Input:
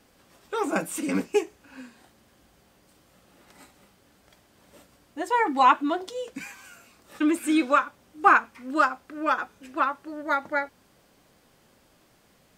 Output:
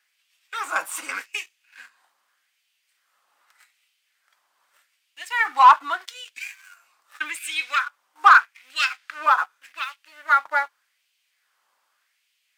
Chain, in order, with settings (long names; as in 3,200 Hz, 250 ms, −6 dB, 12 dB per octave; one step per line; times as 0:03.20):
0:08.76–0:09.26: meter weighting curve D
leveller curve on the samples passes 2
auto-filter high-pass sine 0.83 Hz 1,000–2,700 Hz
level −5 dB